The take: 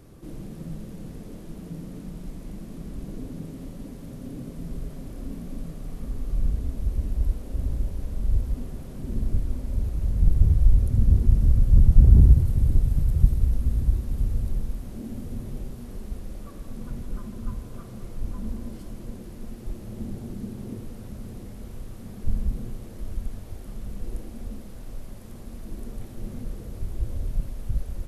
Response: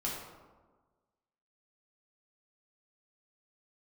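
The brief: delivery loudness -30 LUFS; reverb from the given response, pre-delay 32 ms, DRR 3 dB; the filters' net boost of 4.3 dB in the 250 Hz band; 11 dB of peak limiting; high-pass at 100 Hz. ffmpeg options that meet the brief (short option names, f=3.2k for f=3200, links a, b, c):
-filter_complex "[0:a]highpass=100,equalizer=f=250:t=o:g=6,alimiter=limit=-18.5dB:level=0:latency=1,asplit=2[a][b];[1:a]atrim=start_sample=2205,adelay=32[c];[b][c]afir=irnorm=-1:irlink=0,volume=-6.5dB[d];[a][d]amix=inputs=2:normalize=0,volume=1.5dB"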